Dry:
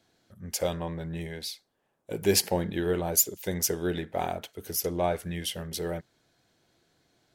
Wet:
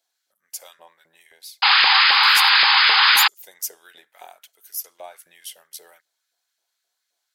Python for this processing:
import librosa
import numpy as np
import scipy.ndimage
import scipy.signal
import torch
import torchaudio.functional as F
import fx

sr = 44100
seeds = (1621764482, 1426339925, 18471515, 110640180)

y = librosa.effects.preemphasis(x, coef=0.8, zi=[0.0])
y = fx.spec_paint(y, sr, seeds[0], shape='noise', start_s=1.62, length_s=1.66, low_hz=760.0, high_hz=5100.0, level_db=-15.0)
y = fx.filter_lfo_highpass(y, sr, shape='saw_up', hz=3.8, low_hz=570.0, high_hz=1700.0, q=1.6)
y = y * 10.0 ** (-1.0 / 20.0)